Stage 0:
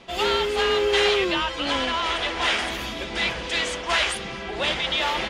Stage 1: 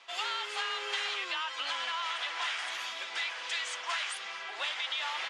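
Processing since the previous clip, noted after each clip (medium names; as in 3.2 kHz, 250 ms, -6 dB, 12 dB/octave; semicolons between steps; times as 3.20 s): Chebyshev band-pass 1.1–8.4 kHz, order 2; compression, threshold -27 dBFS, peak gain reduction 8 dB; trim -4 dB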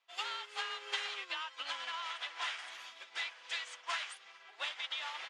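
upward expansion 2.5:1, over -46 dBFS; trim -1 dB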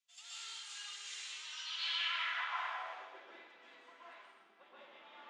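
peak limiter -33 dBFS, peak gain reduction 9.5 dB; band-pass sweep 7.4 kHz -> 240 Hz, 1.31–3.33 s; plate-style reverb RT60 1.3 s, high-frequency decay 0.9×, pre-delay 110 ms, DRR -9 dB; trim +2.5 dB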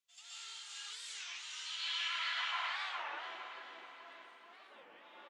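on a send: feedback delay 432 ms, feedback 45%, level -3 dB; on the sum: warped record 33 1/3 rpm, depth 250 cents; trim -1.5 dB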